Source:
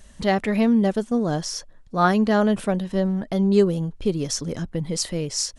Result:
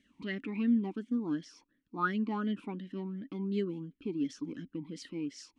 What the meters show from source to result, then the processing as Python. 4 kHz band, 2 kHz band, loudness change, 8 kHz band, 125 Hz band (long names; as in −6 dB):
−19.0 dB, −11.0 dB, −13.0 dB, below −25 dB, −16.0 dB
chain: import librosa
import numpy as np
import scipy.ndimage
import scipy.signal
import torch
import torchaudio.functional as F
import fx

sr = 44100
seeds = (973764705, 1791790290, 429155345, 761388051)

y = fx.vowel_sweep(x, sr, vowels='i-u', hz=2.8)